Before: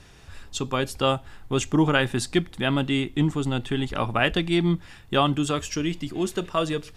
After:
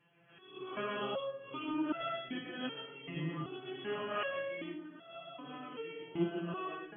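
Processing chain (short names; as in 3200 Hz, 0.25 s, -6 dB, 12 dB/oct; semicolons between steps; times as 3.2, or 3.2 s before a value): spectral swells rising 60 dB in 0.58 s; digital reverb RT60 0.68 s, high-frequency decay 0.4×, pre-delay 80 ms, DRR -0.5 dB; 4.73–5.77 compressor 6:1, threshold -22 dBFS, peak gain reduction 9 dB; FFT band-pass 110–3400 Hz; random-step tremolo; on a send: delay with a stepping band-pass 0.583 s, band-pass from 220 Hz, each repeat 0.7 oct, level -9.5 dB; on the sum: stepped resonator 2.6 Hz 170–670 Hz; gain -1.5 dB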